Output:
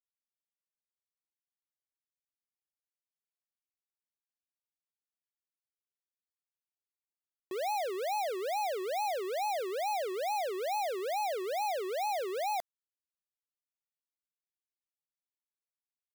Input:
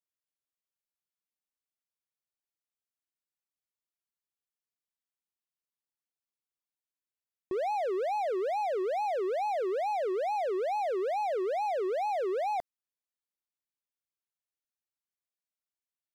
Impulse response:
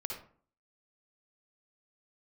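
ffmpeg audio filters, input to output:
-af "aemphasis=mode=production:type=riaa,aeval=exprs='sgn(val(0))*max(abs(val(0))-0.00398,0)':c=same"

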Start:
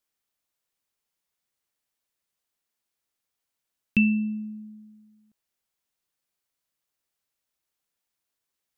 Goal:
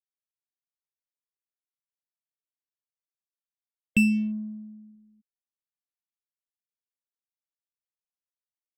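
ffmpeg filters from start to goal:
-af "afftfilt=real='re*gte(hypot(re,im),0.0126)':imag='im*gte(hypot(re,im),0.0126)':win_size=1024:overlap=0.75,adynamicsmooth=sensitivity=7:basefreq=1.3k"

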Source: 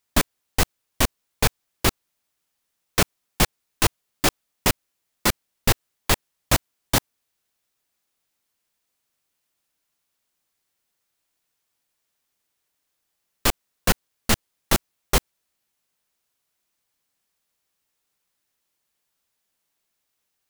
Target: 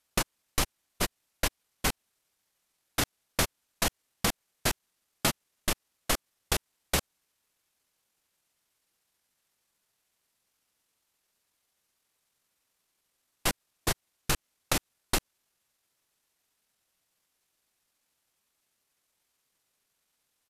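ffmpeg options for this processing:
-af "aeval=exprs='0.188*(abs(mod(val(0)/0.188+3,4)-2)-1)':c=same,acompressor=threshold=-23dB:ratio=12,asetrate=28595,aresample=44100,atempo=1.54221"

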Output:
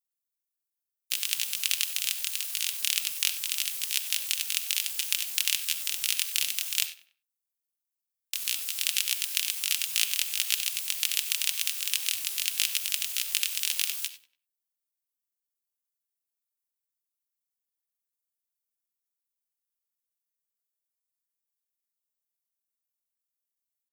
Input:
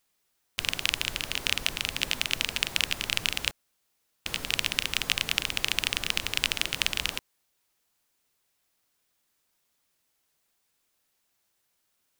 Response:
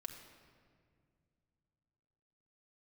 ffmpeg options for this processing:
-filter_complex "[0:a]aderivative,bandreject=f=50:t=h:w=6,bandreject=f=100:t=h:w=6,bandreject=f=150:t=h:w=6,bandreject=f=200:t=h:w=6,bandreject=f=250:t=h:w=6,bandreject=f=300:t=h:w=6,bandreject=f=350:t=h:w=6,asoftclip=type=tanh:threshold=-7.5dB,atempo=0.51,agate=range=-24dB:threshold=-60dB:ratio=16:detection=peak,asplit=2[a][b];[b]adelay=96,lowpass=f=3.3k:p=1,volume=-16dB,asplit=2[c][d];[d]adelay=96,lowpass=f=3.3k:p=1,volume=0.36,asplit=2[e][f];[f]adelay=96,lowpass=f=3.3k:p=1,volume=0.36[g];[a][c][e][g]amix=inputs=4:normalize=0,asplit=2[h][i];[1:a]atrim=start_sample=2205,afade=t=out:st=0.16:d=0.01,atrim=end_sample=7497,highshelf=f=3.1k:g=10.5[j];[i][j]afir=irnorm=-1:irlink=0,volume=6dB[k];[h][k]amix=inputs=2:normalize=0,volume=-5dB"

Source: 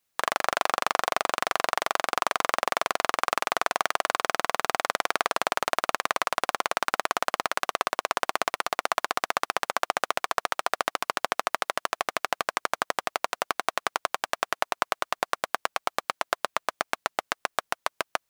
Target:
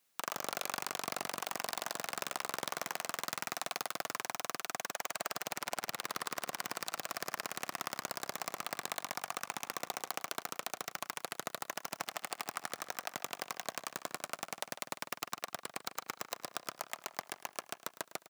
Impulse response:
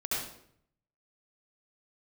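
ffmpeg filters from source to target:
-filter_complex "[0:a]aeval=exprs='(mod(5.01*val(0)+1,2)-1)/5.01':c=same,asplit=2[a][b];[b]adelay=150,lowpass=f=4.6k:p=1,volume=-21dB,asplit=2[c][d];[d]adelay=150,lowpass=f=4.6k:p=1,volume=0.48,asplit=2[e][f];[f]adelay=150,lowpass=f=4.6k:p=1,volume=0.48[g];[c][e][g]amix=inputs=3:normalize=0[h];[a][h]amix=inputs=2:normalize=0,alimiter=level_in=0.5dB:limit=-24dB:level=0:latency=1:release=50,volume=-0.5dB,highpass=f=140:w=0.5412,highpass=f=140:w=1.3066,asplit=2[i][j];[j]aecho=0:1:106|212|318:0.141|0.0551|0.0215[k];[i][k]amix=inputs=2:normalize=0,volume=2dB"

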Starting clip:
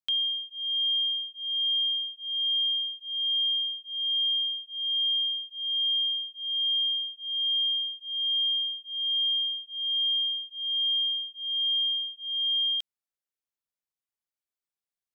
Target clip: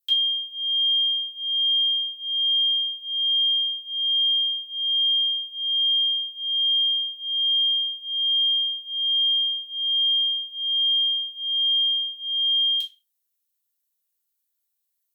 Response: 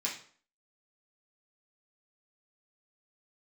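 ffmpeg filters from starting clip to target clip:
-filter_complex "[0:a]aemphasis=mode=production:type=75fm[a];[1:a]atrim=start_sample=2205,asetrate=74970,aresample=44100[b];[a][b]afir=irnorm=-1:irlink=0,volume=1.5dB"

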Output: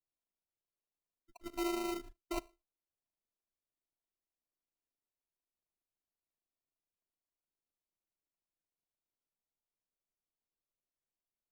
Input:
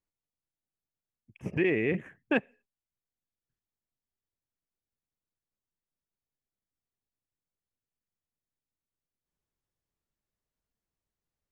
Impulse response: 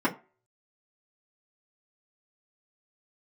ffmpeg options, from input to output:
-af "afftdn=nr=15:nf=-47,areverse,acompressor=threshold=-34dB:ratio=12,areverse,aexciter=amount=1.7:drive=8.2:freq=2.4k,afftfilt=real='hypot(re,im)*cos(PI*b)':imag='0':win_size=512:overlap=0.75,acrusher=samples=26:mix=1:aa=0.000001,volume=3.5dB"

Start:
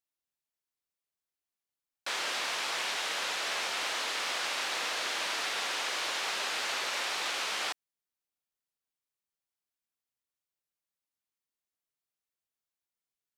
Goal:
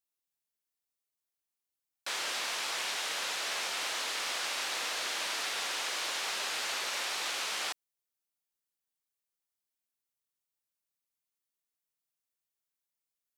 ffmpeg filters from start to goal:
-af "highshelf=f=5.8k:g=7,volume=-3dB"

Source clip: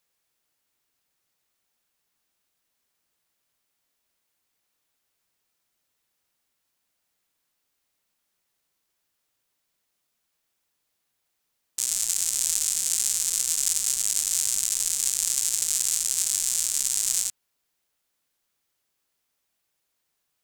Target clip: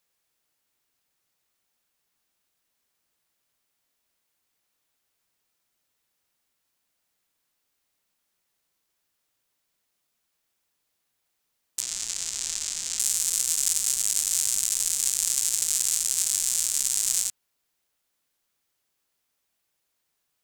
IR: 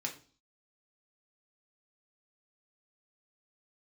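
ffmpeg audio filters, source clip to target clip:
-filter_complex "[0:a]asettb=1/sr,asplit=3[a][b][c];[a]atrim=end=11.814[d];[b]atrim=start=11.81:end=12.99,asetpts=PTS-STARTPTS,afade=t=in:d=0.004:c=qsin,afade=t=out:st=1.176:d=0.004:c=qsin,acrossover=split=7100[e][f];[f]acompressor=threshold=-42dB:ratio=4:attack=1:release=60[g];[e][g]amix=inputs=2:normalize=0[h];[c]atrim=start=12.986[i];[d][h]acrossfade=d=0.004:c1=hsin:c2=qsin[j];[j][i]acrossfade=d=0.004:c1=qsin:c2=hsin"

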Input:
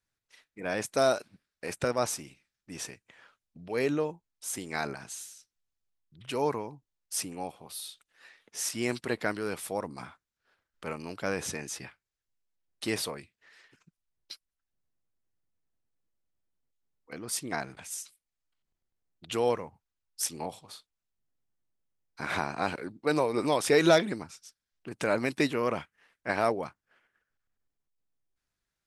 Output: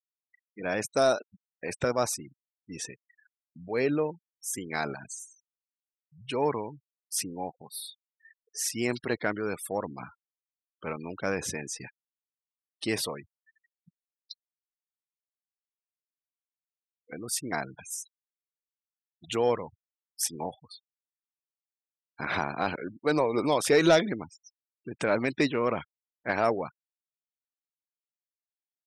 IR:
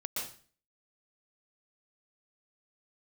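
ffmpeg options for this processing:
-filter_complex "[0:a]asettb=1/sr,asplit=3[a][b][c];[a]atrim=end=14.324[d];[b]atrim=start=14.32:end=17.27,asetpts=PTS-STARTPTS,afade=t=in:d=0.004:c=qsin,afade=t=out:st=2.946:d=0.004:c=qsin,lowpass=2.8k[e];[c]atrim=start=17.266[f];[d][e]acrossfade=d=0.004:c1=hsin:c2=qsin[g];[g][f]acrossfade=d=0.004:c1=qsin:c2=hsin,afftfilt=real='re*gte(hypot(re,im),0.01)':imag='im*gte(hypot(re,im),0.01)':win_size=1024:overlap=0.75,asoftclip=type=tanh:threshold=-12.5dB,volume=2dB"

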